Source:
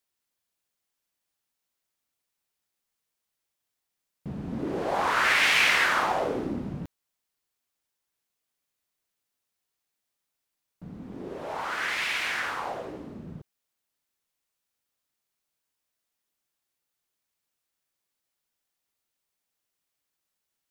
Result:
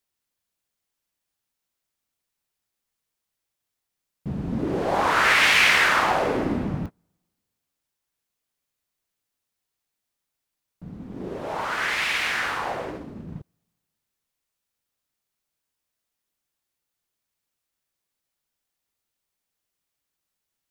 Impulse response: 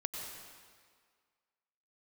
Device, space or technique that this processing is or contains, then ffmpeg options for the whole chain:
keyed gated reverb: -filter_complex "[0:a]asplit=3[a][b][c];[1:a]atrim=start_sample=2205[d];[b][d]afir=irnorm=-1:irlink=0[e];[c]apad=whole_len=912871[f];[e][f]sidechaingate=range=-31dB:threshold=-38dB:ratio=16:detection=peak,volume=-4dB[g];[a][g]amix=inputs=2:normalize=0,lowshelf=f=160:g=5.5"

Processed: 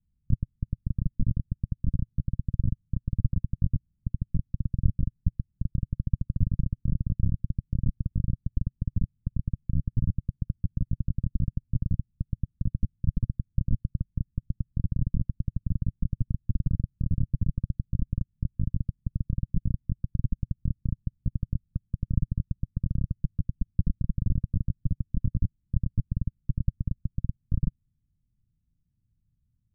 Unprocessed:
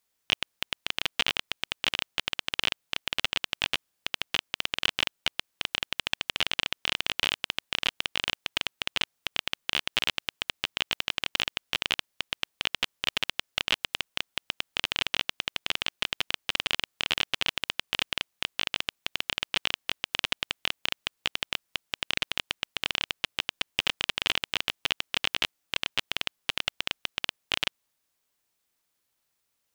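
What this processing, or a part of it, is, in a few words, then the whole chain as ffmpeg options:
the neighbour's flat through the wall: -af "lowpass=f=200:w=0.5412,lowpass=f=200:w=1.3066,aemphasis=mode=reproduction:type=riaa,equalizer=f=120:t=o:w=0.94:g=5,volume=8.5dB"

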